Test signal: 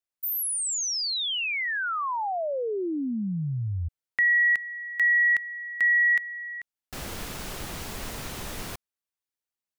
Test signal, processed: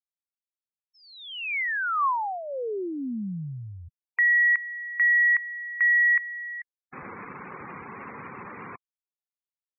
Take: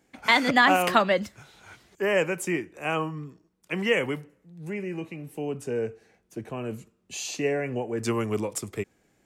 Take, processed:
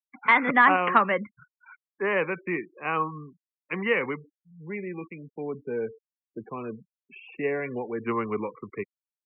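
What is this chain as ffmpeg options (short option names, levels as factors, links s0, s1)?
-af "highpass=180,equalizer=f=310:t=q:w=4:g=-3,equalizer=f=640:t=q:w=4:g=-8,equalizer=f=1100:t=q:w=4:g=7,equalizer=f=2200:t=q:w=4:g=3,lowpass=f=2400:w=0.5412,lowpass=f=2400:w=1.3066,afftfilt=real='re*gte(hypot(re,im),0.0126)':imag='im*gte(hypot(re,im),0.0126)':win_size=1024:overlap=0.75"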